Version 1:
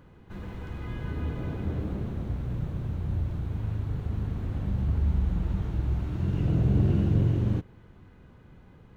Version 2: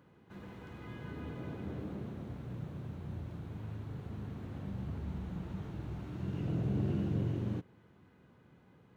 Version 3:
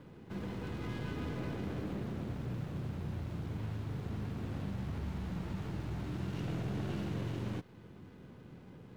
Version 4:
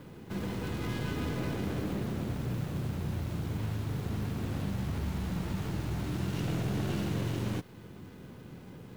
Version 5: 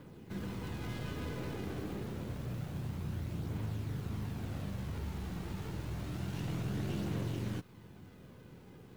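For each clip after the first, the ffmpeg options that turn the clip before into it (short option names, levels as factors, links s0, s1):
-af "highpass=130,volume=0.473"
-filter_complex "[0:a]acrossover=split=620[s0][s1];[s0]acompressor=threshold=0.00501:ratio=6[s2];[s1]aeval=exprs='max(val(0),0)':c=same[s3];[s2][s3]amix=inputs=2:normalize=0,volume=3.16"
-af "crystalizer=i=1.5:c=0,volume=1.78"
-af "aphaser=in_gain=1:out_gain=1:delay=2.7:decay=0.23:speed=0.28:type=triangular,volume=0.501"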